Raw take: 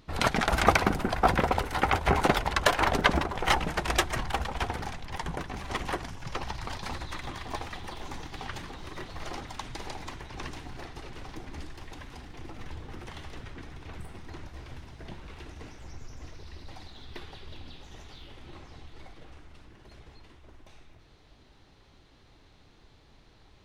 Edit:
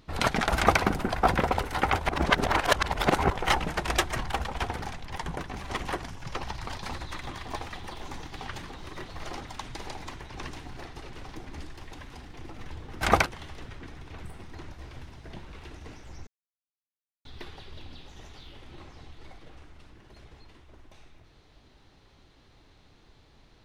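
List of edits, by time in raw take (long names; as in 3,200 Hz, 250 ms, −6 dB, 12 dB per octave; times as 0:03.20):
0:00.56–0:00.81: duplicate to 0:13.01
0:02.09–0:03.30: reverse
0:16.02–0:17.00: silence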